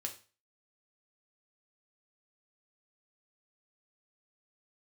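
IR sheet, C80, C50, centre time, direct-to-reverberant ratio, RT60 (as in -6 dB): 17.5 dB, 12.0 dB, 12 ms, 2.5 dB, 0.35 s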